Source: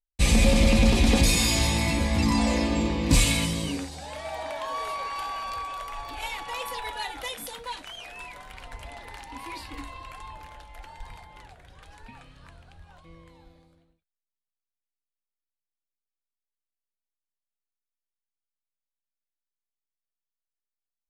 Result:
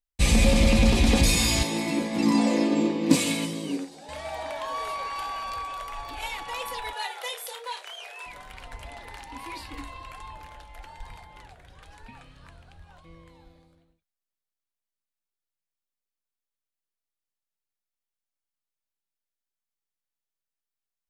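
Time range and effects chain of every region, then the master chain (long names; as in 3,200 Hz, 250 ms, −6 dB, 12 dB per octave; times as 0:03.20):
0:01.63–0:04.09: high-pass filter 160 Hz 24 dB per octave + parametric band 350 Hz +9.5 dB 1.3 octaves + expander for the loud parts, over −30 dBFS
0:06.93–0:08.26: Butterworth high-pass 380 Hz 96 dB per octave + double-tracking delay 30 ms −9 dB
whole clip: no processing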